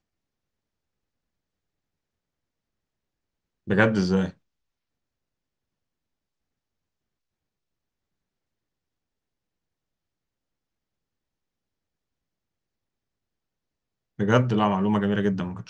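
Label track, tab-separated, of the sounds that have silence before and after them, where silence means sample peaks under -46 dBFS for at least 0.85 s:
3.670000	4.320000	sound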